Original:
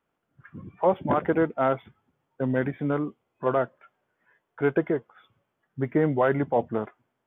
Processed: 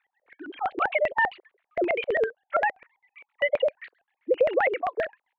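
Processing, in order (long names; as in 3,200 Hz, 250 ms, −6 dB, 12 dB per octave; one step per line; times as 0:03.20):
three sine waves on the formant tracks
wrong playback speed 33 rpm record played at 45 rpm
downward compressor 10 to 1, threshold −27 dBFS, peak gain reduction 12.5 dB
high-pass filter 280 Hz 24 dB per octave
tilt shelving filter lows −5.5 dB, about 1,100 Hz
auto-filter low-pass square 7.6 Hz 520–2,300 Hz
level +6 dB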